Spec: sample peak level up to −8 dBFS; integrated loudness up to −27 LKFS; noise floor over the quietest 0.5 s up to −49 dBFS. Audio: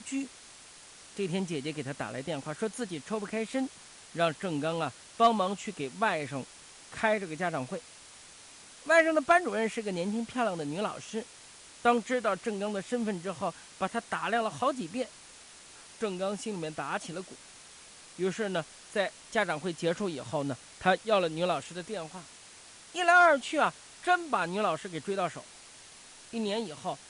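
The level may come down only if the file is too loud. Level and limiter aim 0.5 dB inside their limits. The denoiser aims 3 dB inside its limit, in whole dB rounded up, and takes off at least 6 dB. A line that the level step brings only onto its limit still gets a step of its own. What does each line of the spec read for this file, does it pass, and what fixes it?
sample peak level −11.5 dBFS: in spec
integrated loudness −30.5 LKFS: in spec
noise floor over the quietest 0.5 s −52 dBFS: in spec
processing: no processing needed

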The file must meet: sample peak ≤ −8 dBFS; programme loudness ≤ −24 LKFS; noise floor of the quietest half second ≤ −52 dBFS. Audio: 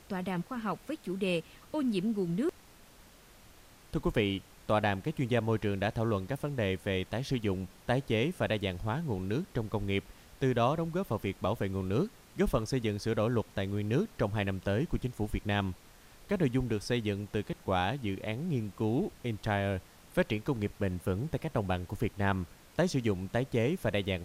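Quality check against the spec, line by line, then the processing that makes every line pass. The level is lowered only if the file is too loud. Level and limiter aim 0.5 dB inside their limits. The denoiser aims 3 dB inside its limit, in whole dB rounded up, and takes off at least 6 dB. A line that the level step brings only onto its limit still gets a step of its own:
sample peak −14.5 dBFS: in spec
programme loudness −33.0 LKFS: in spec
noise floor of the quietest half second −57 dBFS: in spec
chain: no processing needed

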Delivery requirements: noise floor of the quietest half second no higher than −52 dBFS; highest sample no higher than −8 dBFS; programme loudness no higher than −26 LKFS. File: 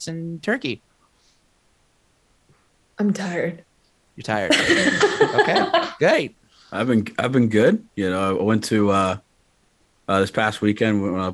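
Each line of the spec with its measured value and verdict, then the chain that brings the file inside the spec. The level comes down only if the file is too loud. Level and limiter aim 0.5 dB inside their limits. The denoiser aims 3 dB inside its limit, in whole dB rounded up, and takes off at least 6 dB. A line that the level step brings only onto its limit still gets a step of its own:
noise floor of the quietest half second −62 dBFS: in spec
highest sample −5.0 dBFS: out of spec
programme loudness −20.0 LKFS: out of spec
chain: level −6.5 dB

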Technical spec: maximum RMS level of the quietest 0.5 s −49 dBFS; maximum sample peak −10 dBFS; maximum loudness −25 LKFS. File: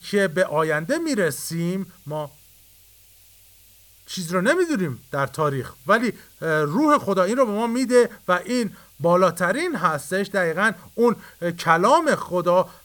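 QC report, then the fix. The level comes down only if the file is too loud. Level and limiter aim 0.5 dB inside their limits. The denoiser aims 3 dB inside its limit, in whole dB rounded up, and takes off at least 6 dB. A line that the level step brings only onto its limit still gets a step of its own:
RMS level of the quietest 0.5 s −52 dBFS: in spec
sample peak −4.0 dBFS: out of spec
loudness −21.5 LKFS: out of spec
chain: level −4 dB
brickwall limiter −10.5 dBFS

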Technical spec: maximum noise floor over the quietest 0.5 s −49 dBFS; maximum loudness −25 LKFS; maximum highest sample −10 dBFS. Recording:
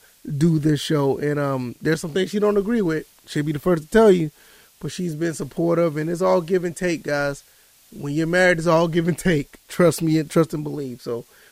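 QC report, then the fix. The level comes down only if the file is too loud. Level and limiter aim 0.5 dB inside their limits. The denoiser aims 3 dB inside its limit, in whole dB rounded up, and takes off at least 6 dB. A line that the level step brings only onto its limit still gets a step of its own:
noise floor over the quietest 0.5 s −54 dBFS: in spec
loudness −21.0 LKFS: out of spec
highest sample −3.0 dBFS: out of spec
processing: level −4.5 dB
brickwall limiter −10.5 dBFS

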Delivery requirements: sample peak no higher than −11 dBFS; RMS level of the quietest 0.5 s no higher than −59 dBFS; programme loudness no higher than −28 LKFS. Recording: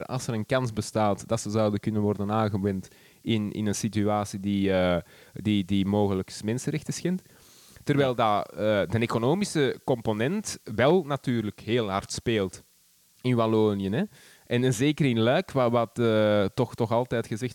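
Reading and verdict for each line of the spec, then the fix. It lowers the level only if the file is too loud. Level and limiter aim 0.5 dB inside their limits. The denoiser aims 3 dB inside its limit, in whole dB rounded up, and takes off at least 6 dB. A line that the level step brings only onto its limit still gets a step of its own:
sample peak −9.0 dBFS: out of spec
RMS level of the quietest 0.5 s −62 dBFS: in spec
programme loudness −26.5 LKFS: out of spec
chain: level −2 dB
brickwall limiter −11.5 dBFS

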